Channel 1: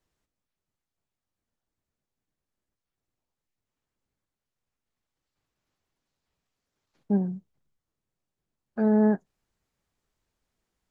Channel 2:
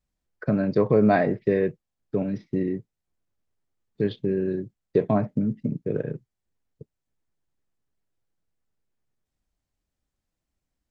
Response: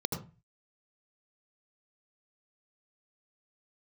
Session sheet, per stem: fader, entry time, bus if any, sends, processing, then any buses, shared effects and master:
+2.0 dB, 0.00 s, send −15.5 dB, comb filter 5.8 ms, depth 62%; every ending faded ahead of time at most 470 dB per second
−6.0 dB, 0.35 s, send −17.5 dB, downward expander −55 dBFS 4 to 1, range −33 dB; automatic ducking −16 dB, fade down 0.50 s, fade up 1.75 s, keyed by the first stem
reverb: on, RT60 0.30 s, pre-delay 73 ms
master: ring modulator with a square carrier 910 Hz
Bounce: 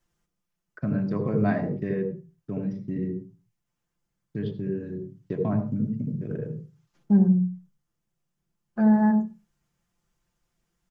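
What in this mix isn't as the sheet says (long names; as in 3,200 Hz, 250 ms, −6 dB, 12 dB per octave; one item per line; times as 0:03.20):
stem 2: send −17.5 dB → −11.5 dB
master: missing ring modulator with a square carrier 910 Hz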